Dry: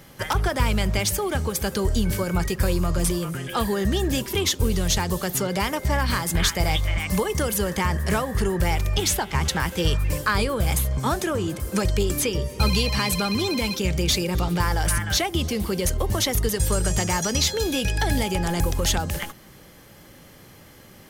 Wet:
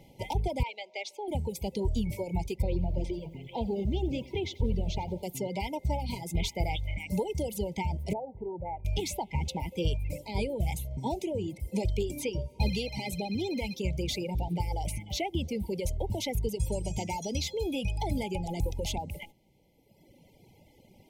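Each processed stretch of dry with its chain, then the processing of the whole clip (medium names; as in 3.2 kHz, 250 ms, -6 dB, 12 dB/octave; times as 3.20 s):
0.63–1.28 s: high-pass 290 Hz 24 dB/octave + three-band isolator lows -17 dB, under 450 Hz, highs -24 dB, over 5.8 kHz
2.62–5.23 s: distance through air 160 m + bit-crushed delay 90 ms, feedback 55%, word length 7-bit, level -9 dB
8.13–8.85 s: inverse Chebyshev low-pass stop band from 6.8 kHz, stop band 80 dB + tilt EQ +3 dB/octave
whole clip: FFT band-reject 970–2000 Hz; reverb removal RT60 1.9 s; treble shelf 3.4 kHz -11 dB; trim -5.5 dB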